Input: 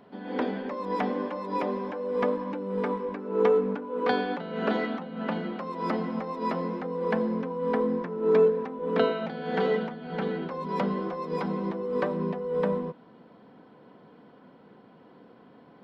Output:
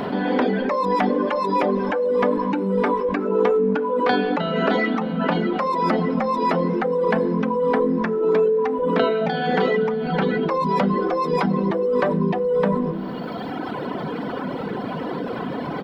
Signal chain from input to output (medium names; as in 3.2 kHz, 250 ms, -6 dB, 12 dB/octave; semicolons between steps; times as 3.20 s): reverb removal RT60 1.9 s; de-hum 109.9 Hz, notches 5; on a send at -22 dB: comb 4.7 ms + reverberation RT60 0.65 s, pre-delay 7 ms; on the sum: level flattener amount 70%; trim +3.5 dB